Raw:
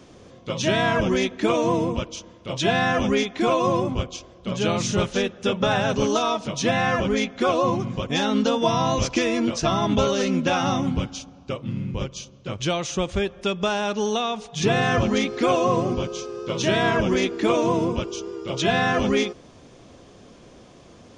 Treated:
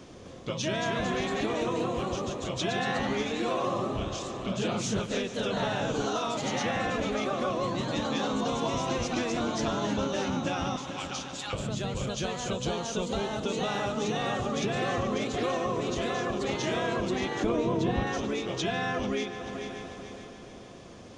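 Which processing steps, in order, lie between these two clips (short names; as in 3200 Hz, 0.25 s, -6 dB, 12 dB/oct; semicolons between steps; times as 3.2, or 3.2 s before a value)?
echoes that change speed 0.258 s, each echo +1 st, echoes 3; 10.76–11.53 elliptic high-pass 870 Hz; 12.53–13.52 bell 2000 Hz -5.5 dB 1 oct; multi-head echo 0.146 s, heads first and third, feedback 56%, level -17.5 dB; compressor 2.5:1, threshold -32 dBFS, peak gain reduction 12.5 dB; 17.44–18.07 tilt -2 dB/oct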